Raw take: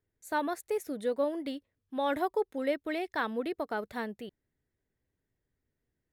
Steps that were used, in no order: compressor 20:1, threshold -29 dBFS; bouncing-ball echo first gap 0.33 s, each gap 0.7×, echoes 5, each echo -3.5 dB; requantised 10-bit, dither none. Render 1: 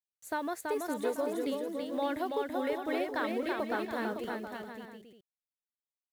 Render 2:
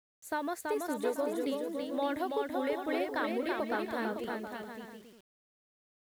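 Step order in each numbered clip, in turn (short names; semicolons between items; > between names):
compressor > requantised > bouncing-ball echo; compressor > bouncing-ball echo > requantised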